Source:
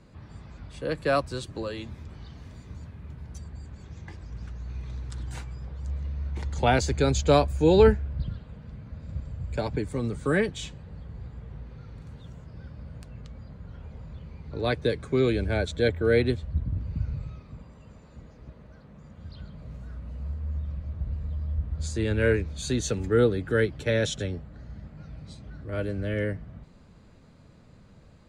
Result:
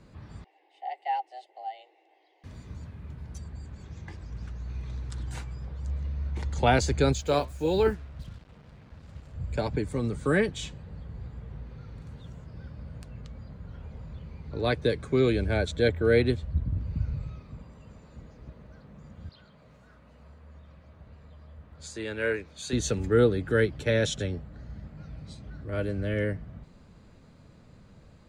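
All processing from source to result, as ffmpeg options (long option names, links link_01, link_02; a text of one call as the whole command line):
ffmpeg -i in.wav -filter_complex "[0:a]asettb=1/sr,asplit=3[link_01][link_02][link_03];[link_01]atrim=end=0.444[link_04];[link_02]atrim=start=0.44:end=2.44,asetpts=PTS-STARTPTS,afade=type=in:duration=0.004:curve=qsin,afade=type=out:start_time=1.996:duration=0.004:curve=qsin,asplit=3[link_05][link_06][link_07];[link_05]bandpass=frequency=530:width_type=q:width=8,volume=0dB[link_08];[link_06]bandpass=frequency=1840:width_type=q:width=8,volume=-6dB[link_09];[link_07]bandpass=frequency=2480:width_type=q:width=8,volume=-9dB[link_10];[link_08][link_09][link_10]amix=inputs=3:normalize=0,highshelf=frequency=4400:gain=3.5,afreqshift=250[link_11];[link_03]atrim=start=2.436[link_12];[link_04][link_11]acrossfade=duration=0.004:curve1=hsin:curve2=qsin[link_13];[link_13][link_12]acrossfade=duration=0.004:curve1=qsin:curve2=hsin,asettb=1/sr,asplit=3[link_14][link_15][link_16];[link_14]atrim=end=7.134[link_17];[link_15]atrim=start=7.13:end=9.35,asetpts=PTS-STARTPTS,afade=type=in:duration=0.004:curve=qsin,afade=type=out:start_time=2.216:duration=0.004:curve=qsin,lowshelf=frequency=290:gain=-6,acrusher=bits=7:mix=0:aa=0.5,flanger=delay=0.2:depth=7.6:regen=82:speed=1.6:shape=sinusoidal[link_18];[link_16]atrim=start=9.346[link_19];[link_17][link_18]acrossfade=duration=0.004:curve1=hsin:curve2=qsin[link_20];[link_20][link_19]acrossfade=duration=0.004:curve1=qsin:curve2=hsin,asettb=1/sr,asplit=3[link_21][link_22][link_23];[link_21]atrim=end=19.294[link_24];[link_22]atrim=start=19.29:end=22.73,asetpts=PTS-STARTPTS,afade=type=in:duration=0.004:curve=qsin,afade=type=out:start_time=3.436:duration=0.004:curve=qsin,highpass=frequency=690:poles=1,highshelf=frequency=3300:gain=-4.5[link_25];[link_23]atrim=start=22.726[link_26];[link_24][link_25]acrossfade=duration=0.004:curve1=hsin:curve2=qsin[link_27];[link_27][link_26]acrossfade=duration=0.004:curve1=qsin:curve2=hsin" out.wav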